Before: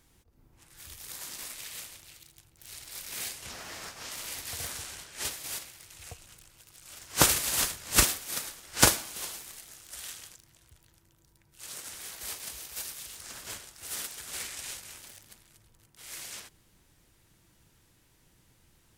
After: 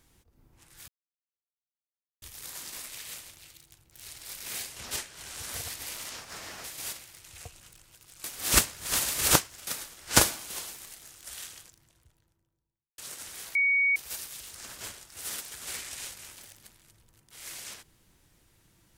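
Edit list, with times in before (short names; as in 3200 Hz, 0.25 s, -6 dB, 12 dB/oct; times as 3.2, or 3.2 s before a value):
0.88 insert silence 1.34 s
3.57–5.3 reverse
6.9–8.33 reverse
10.07–11.64 studio fade out
12.21–12.62 bleep 2240 Hz -21 dBFS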